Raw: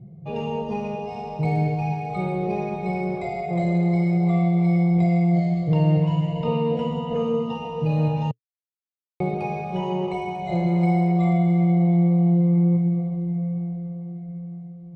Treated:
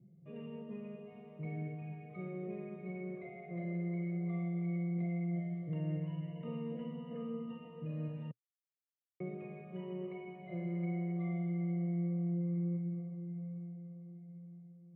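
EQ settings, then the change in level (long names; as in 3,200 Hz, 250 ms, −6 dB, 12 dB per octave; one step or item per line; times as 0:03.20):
loudspeaker in its box 310–3,000 Hz, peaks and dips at 320 Hz −4 dB, 450 Hz −10 dB, 650 Hz −4 dB, 980 Hz −4 dB, 1,400 Hz −8 dB, 2,500 Hz −10 dB
high-shelf EQ 2,100 Hz −10.5 dB
phaser with its sweep stopped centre 2,000 Hz, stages 4
−5.5 dB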